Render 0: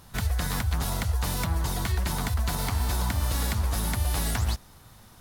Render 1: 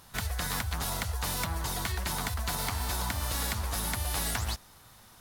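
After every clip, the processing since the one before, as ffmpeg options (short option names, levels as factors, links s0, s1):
-af "lowshelf=f=430:g=-8"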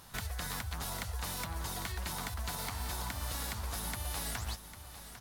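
-af "acompressor=threshold=0.01:ratio=2,aecho=1:1:800:0.237"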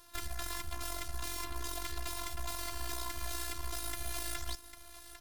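-af "bandreject=f=840:w=12,aeval=exprs='0.0794*(cos(1*acos(clip(val(0)/0.0794,-1,1)))-cos(1*PI/2))+0.0158*(cos(8*acos(clip(val(0)/0.0794,-1,1)))-cos(8*PI/2))':c=same,afftfilt=real='hypot(re,im)*cos(PI*b)':imag='0':win_size=512:overlap=0.75"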